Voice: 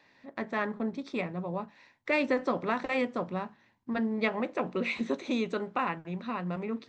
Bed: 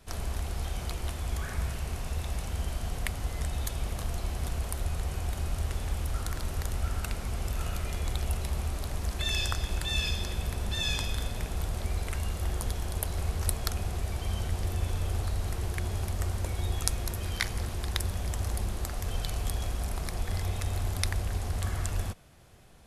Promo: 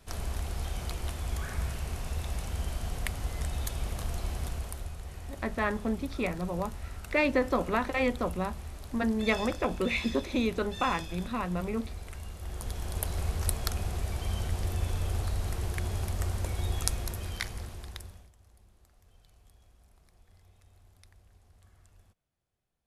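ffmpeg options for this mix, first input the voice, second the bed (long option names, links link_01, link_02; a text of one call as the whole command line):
ffmpeg -i stem1.wav -i stem2.wav -filter_complex "[0:a]adelay=5050,volume=1.5dB[link_01];[1:a]volume=8dB,afade=type=out:start_time=4.34:duration=0.62:silence=0.375837,afade=type=in:start_time=12.41:duration=0.63:silence=0.354813,afade=type=out:start_time=16.83:duration=1.48:silence=0.0375837[link_02];[link_01][link_02]amix=inputs=2:normalize=0" out.wav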